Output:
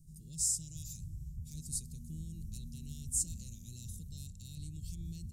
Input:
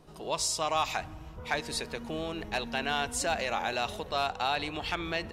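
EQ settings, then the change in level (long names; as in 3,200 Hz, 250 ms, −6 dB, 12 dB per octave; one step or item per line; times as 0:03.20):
Chebyshev band-stop filter 150–7,400 Hz, order 3
+3.0 dB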